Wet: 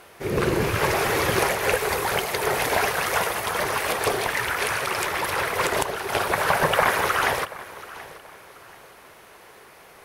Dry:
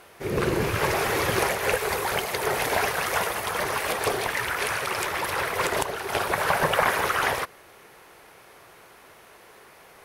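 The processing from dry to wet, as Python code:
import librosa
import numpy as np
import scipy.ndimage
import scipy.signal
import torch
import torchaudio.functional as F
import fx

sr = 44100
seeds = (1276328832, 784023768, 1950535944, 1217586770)

y = fx.echo_feedback(x, sr, ms=731, feedback_pct=31, wet_db=-18)
y = y * 10.0 ** (2.0 / 20.0)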